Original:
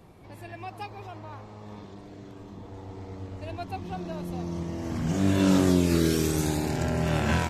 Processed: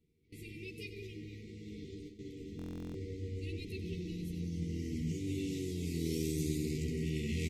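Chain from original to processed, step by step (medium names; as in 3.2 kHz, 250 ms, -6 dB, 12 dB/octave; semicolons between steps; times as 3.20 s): gate with hold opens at -36 dBFS; FFT band-reject 490–1900 Hz; reverse; compression 4:1, threshold -34 dBFS, peak gain reduction 14 dB; reverse; doubling 13 ms -3 dB; on a send: two-band feedback delay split 560 Hz, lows 433 ms, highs 93 ms, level -12 dB; on the sum: buffer glitch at 2.57 s, samples 1024, times 15; trim -3 dB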